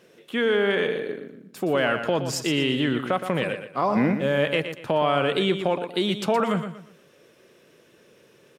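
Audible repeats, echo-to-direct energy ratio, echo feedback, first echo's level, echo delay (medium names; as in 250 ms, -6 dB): 3, -8.5 dB, 31%, -9.0 dB, 119 ms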